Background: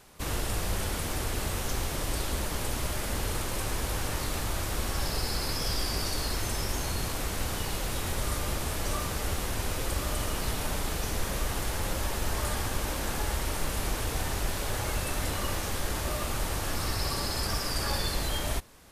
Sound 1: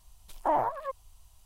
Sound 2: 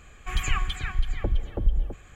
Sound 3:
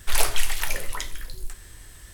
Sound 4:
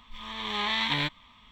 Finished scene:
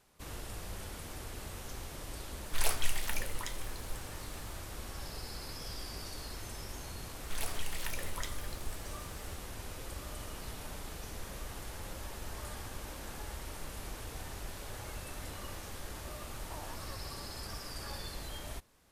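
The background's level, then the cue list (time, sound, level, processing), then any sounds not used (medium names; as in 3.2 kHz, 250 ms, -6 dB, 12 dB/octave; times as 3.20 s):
background -12.5 dB
2.46 s: add 3 -9.5 dB
7.23 s: add 3 -9 dB + compression 3:1, threshold -22 dBFS
16.05 s: add 1 -14.5 dB + compression, threshold -31 dBFS
not used: 2, 4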